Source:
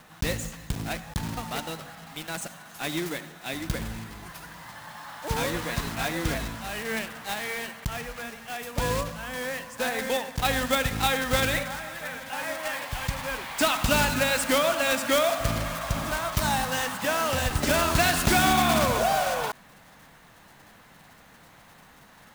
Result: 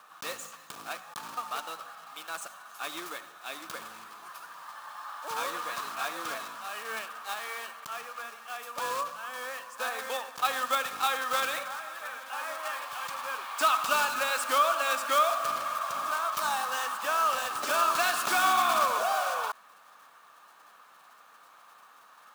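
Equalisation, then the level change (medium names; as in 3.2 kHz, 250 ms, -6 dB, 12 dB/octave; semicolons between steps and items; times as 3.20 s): high-pass 540 Hz 12 dB/octave; peaking EQ 1.2 kHz +13.5 dB 0.38 oct; band-stop 2 kHz, Q 7.7; -5.5 dB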